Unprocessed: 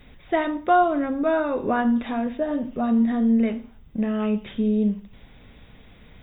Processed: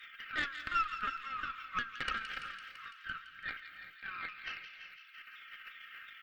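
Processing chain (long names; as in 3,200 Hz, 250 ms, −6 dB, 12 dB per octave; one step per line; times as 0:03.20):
pitch shifter swept by a sawtooth −5 semitones, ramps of 357 ms
high-shelf EQ 3,000 Hz −10 dB
comb filter 3.8 ms, depth 65%
in parallel at 0 dB: downward compressor 12 to 1, threshold −28 dBFS, peak gain reduction 15.5 dB
on the sum: brickwall limiter −15 dBFS, peak gain reduction 10 dB
output level in coarse steps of 16 dB
Chebyshev high-pass filter 1,200 Hz, order 8
harmonic generator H 4 −14 dB, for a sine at −32 dBFS
delay with a high-pass on its return 168 ms, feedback 72%, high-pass 2,100 Hz, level −8 dB
reverb whose tail is shaped and stops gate 410 ms rising, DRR 11 dB
level +10.5 dB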